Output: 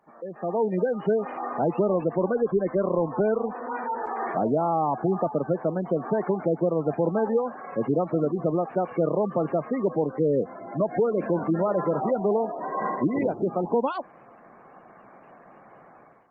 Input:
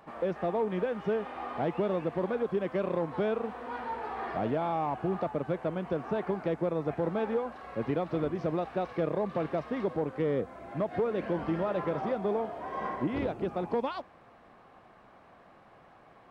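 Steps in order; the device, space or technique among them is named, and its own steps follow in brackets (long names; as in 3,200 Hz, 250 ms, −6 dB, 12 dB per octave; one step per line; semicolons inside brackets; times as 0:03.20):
noise-suppressed video call (high-pass filter 130 Hz 24 dB per octave; gate on every frequency bin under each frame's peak −20 dB strong; automatic gain control gain up to 16 dB; level −8.5 dB; Opus 32 kbit/s 48,000 Hz)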